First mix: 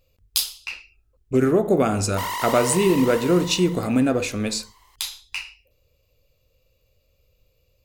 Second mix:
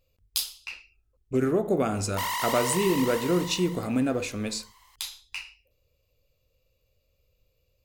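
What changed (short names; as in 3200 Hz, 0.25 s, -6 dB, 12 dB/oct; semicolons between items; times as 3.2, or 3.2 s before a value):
speech -6.0 dB; background: add bell 380 Hz -13 dB 1.3 oct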